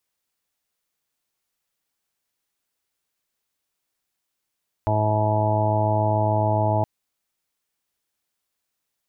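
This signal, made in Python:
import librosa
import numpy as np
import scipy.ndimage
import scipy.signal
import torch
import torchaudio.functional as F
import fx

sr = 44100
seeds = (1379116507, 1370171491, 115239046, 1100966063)

y = fx.additive_steady(sr, length_s=1.97, hz=107.0, level_db=-21.5, upper_db=(-11.5, -9.0, -14, -14.0, -2, -14.5, -3, -11))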